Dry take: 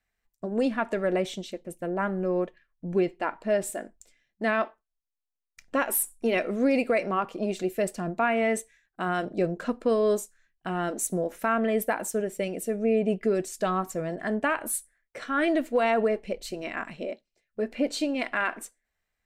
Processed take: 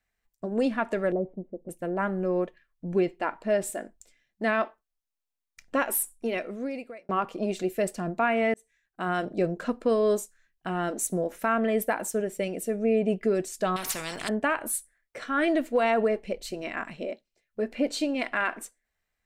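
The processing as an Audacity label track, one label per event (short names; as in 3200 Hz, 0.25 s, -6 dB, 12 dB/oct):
1.120000	1.690000	Bessel low-pass 570 Hz, order 6
5.810000	7.090000	fade out
8.540000	9.110000	fade in
13.760000	14.290000	spectral compressor 4:1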